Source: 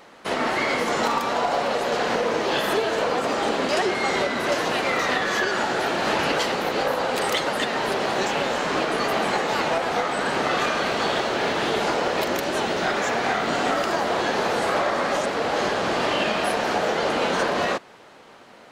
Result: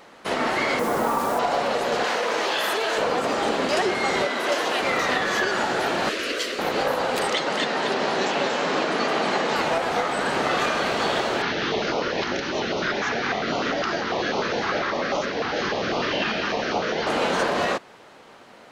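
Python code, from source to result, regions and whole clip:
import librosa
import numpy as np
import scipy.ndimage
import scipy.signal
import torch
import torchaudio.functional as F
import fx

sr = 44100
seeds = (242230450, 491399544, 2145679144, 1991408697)

y = fx.chain(x, sr, fx.lowpass(hz=1400.0, slope=12),
    fx.quant_dither(seeds[0], bits=6, dither='none'),
    fx.env_flatten(amount_pct=50), at=(0.79, 1.39))
y = fx.chain(y, sr, fx.highpass(hz=830.0, slope=6),
    fx.env_flatten(amount_pct=100), at=(2.04, 2.98))
y = fx.chain(y, sr, fx.highpass(hz=290.0, slope=12),
    fx.peak_eq(hz=3200.0, db=3.5, octaves=0.21), at=(4.26, 4.81))
y = fx.chain(y, sr, fx.low_shelf(hz=240.0, db=-10.0),
    fx.fixed_phaser(hz=350.0, stages=4), at=(6.09, 6.59))
y = fx.chain(y, sr, fx.cheby1_bandpass(low_hz=180.0, high_hz=5900.0, order=2),
    fx.echo_single(ms=231, db=-6.0), at=(7.27, 9.56))
y = fx.chain(y, sr, fx.steep_lowpass(hz=6300.0, slope=72),
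    fx.peak_eq(hz=1400.0, db=3.5, octaves=0.78),
    fx.filter_held_notch(hz=10.0, low_hz=570.0, high_hz=1700.0), at=(11.42, 17.07))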